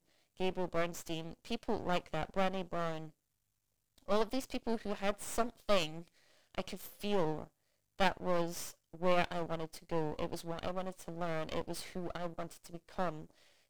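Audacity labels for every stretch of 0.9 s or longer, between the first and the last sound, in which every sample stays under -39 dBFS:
3.050000	4.080000	silence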